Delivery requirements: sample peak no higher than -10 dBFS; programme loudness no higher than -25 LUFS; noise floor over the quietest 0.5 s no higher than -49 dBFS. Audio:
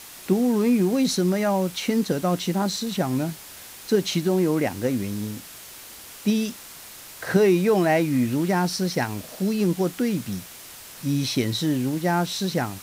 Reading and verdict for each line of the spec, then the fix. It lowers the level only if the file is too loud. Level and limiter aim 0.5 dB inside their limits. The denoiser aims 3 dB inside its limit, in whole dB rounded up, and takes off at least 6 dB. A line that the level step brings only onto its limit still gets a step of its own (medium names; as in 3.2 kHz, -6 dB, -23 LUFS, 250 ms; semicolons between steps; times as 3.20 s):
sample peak -8.0 dBFS: fail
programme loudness -23.5 LUFS: fail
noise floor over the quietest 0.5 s -42 dBFS: fail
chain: noise reduction 8 dB, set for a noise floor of -42 dBFS; trim -2 dB; peak limiter -10.5 dBFS